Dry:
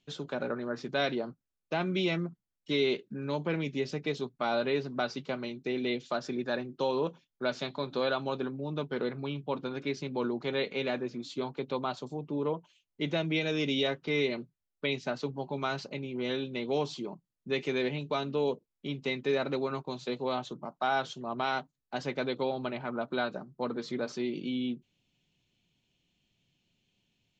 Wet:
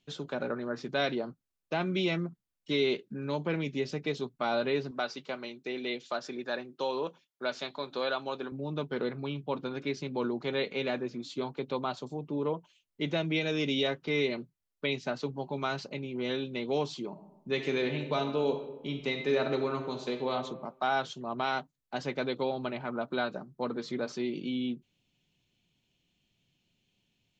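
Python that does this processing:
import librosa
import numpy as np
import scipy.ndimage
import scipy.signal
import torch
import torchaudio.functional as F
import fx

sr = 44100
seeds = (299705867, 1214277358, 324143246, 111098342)

y = fx.highpass(x, sr, hz=450.0, slope=6, at=(4.91, 8.52))
y = fx.reverb_throw(y, sr, start_s=17.09, length_s=3.24, rt60_s=0.98, drr_db=5.5)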